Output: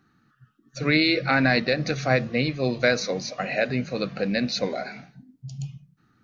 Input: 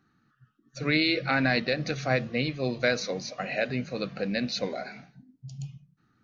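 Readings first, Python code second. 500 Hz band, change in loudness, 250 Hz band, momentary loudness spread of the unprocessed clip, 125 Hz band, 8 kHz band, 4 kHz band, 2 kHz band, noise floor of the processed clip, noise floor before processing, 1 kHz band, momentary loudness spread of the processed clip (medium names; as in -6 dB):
+4.5 dB, +4.0 dB, +4.5 dB, 16 LU, +4.5 dB, no reading, +3.5 dB, +4.0 dB, -66 dBFS, -70 dBFS, +4.5 dB, 17 LU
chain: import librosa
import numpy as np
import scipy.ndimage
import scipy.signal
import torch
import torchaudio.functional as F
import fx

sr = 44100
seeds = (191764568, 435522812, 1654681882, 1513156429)

y = fx.dynamic_eq(x, sr, hz=3100.0, q=3.9, threshold_db=-47.0, ratio=4.0, max_db=-5)
y = y * librosa.db_to_amplitude(4.5)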